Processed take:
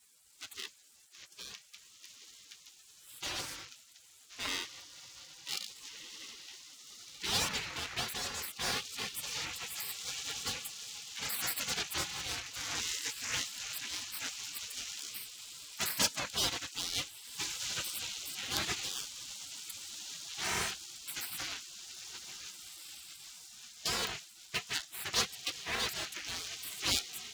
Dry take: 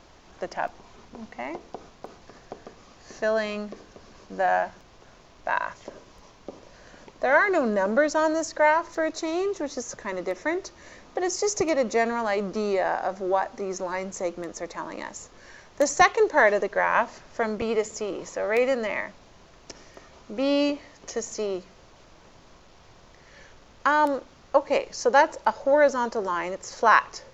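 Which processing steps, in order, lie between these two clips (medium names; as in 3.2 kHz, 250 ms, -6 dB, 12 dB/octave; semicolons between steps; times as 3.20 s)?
high-pass 86 Hz 12 dB/octave; bass shelf 500 Hz -8 dB; echo that smears into a reverb 1704 ms, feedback 57%, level -12 dB; in parallel at -1.5 dB: gain riding within 4 dB 2 s; on the sum: vibrato 4.9 Hz 8 cents; half-wave rectifier; spectral gate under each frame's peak -30 dB weak; trim +5.5 dB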